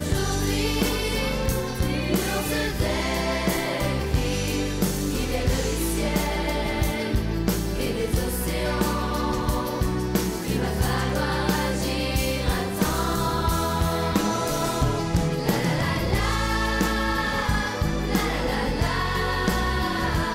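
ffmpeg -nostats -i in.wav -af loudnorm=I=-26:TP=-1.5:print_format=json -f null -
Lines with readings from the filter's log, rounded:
"input_i" : "-24.7",
"input_tp" : "-11.5",
"input_lra" : "1.3",
"input_thresh" : "-34.7",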